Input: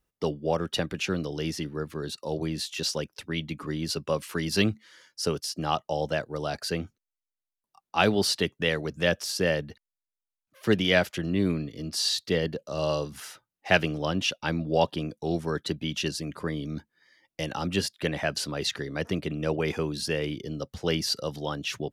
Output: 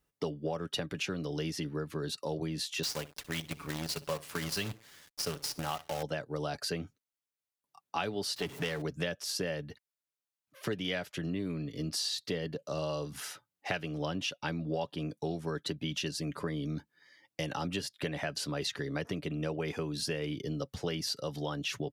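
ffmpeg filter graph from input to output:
ffmpeg -i in.wav -filter_complex "[0:a]asettb=1/sr,asplit=3[link_01][link_02][link_03];[link_01]atrim=end=2.834[link_04];[link_02]atrim=start=2.83:end=6.03,asetpts=PTS-STARTPTS,afade=type=in:duration=0.004:curve=qsin,afade=type=out:start_time=3.196:duration=0.004:curve=qsin,equalizer=frequency=300:width_type=o:width=1.2:gain=-7.5,aecho=1:1:61|122:0.158|0.0269,atrim=end_sample=141120,acrusher=bits=6:dc=4:mix=0:aa=0.000001[link_05];[link_03]atrim=start=6.026[link_06];[link_04][link_05]acrossfade=duration=0.004:curve1=hsin:curve2=qsin[link_07];[link_07][link_06]acrossfade=duration=0.004:curve1=qsin:curve2=hsin,asettb=1/sr,asplit=3[link_08][link_09][link_10];[link_08]atrim=end=8.364[link_11];[link_09]atrim=start=8.36:end=8.82,asetpts=PTS-STARTPTS,afade=type=in:duration=0.004:curve=qsin,afade=type=out:start_time=0.456:duration=0.004:curve=qsin,aeval=exprs='val(0)+0.5*0.0168*sgn(val(0))':channel_layout=same,aeval=exprs='(tanh(7.94*val(0)+0.55)-tanh(0.55))/7.94':channel_layout=same[link_12];[link_10]atrim=start=8.816[link_13];[link_11][link_12]acrossfade=duration=0.004:curve1=hsin:curve2=qsin[link_14];[link_14][link_13]acrossfade=duration=0.004:curve1=qsin:curve2=hsin,highpass=41,acompressor=threshold=-32dB:ratio=6,aecho=1:1:7:0.3" out.wav

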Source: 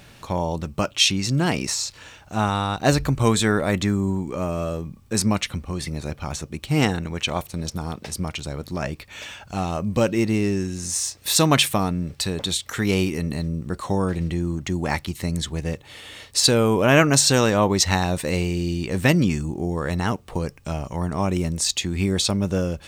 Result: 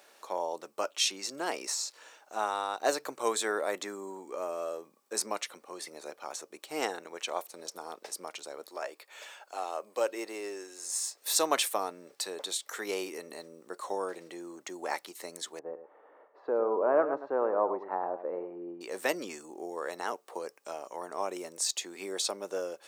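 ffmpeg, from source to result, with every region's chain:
ffmpeg -i in.wav -filter_complex "[0:a]asettb=1/sr,asplit=3[link_01][link_02][link_03];[link_01]atrim=end=8.674[link_04];[link_02]atrim=start=8.67:end=11.18,asetpts=PTS-STARTPTS,afade=type=in:duration=0.004:curve=qsin,afade=type=out:start_time=2.506:duration=0.004:curve=qsin,highpass=360,bandreject=frequency=5900:width=10[link_05];[link_03]atrim=start=11.176[link_06];[link_04][link_05]acrossfade=duration=0.004:curve1=hsin:curve2=qsin[link_07];[link_07][link_06]acrossfade=duration=0.004:curve1=qsin:curve2=hsin,asettb=1/sr,asplit=3[link_08][link_09][link_10];[link_08]atrim=end=15.594[link_11];[link_09]atrim=start=15.59:end=18.81,asetpts=PTS-STARTPTS,afade=type=in:duration=0.004:curve=qsin,afade=type=out:start_time=3.216:duration=0.004:curve=qsin,lowpass=frequency=1200:width=0.5412,lowpass=frequency=1200:width=1.3066,aecho=1:1:104:0.282,atrim=end_sample=142002[link_12];[link_10]atrim=start=18.806[link_13];[link_11][link_12]acrossfade=duration=0.004:curve1=hsin:curve2=qsin[link_14];[link_14][link_13]acrossfade=duration=0.004:curve1=qsin:curve2=hsin,highpass=frequency=410:width=0.5412,highpass=frequency=410:width=1.3066,equalizer=frequency=2800:width=1:gain=-7,volume=-6dB" out.wav

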